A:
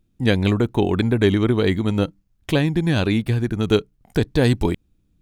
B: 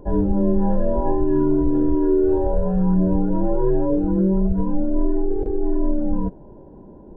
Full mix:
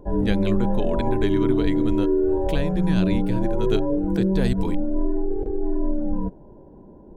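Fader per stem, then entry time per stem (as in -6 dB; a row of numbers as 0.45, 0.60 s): -8.5, -3.0 dB; 0.00, 0.00 s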